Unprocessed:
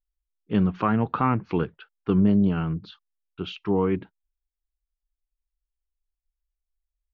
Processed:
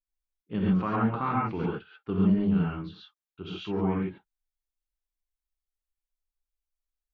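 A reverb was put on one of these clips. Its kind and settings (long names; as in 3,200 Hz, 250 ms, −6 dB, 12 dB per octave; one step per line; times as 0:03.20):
reverb whose tail is shaped and stops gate 160 ms rising, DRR −5 dB
level −9.5 dB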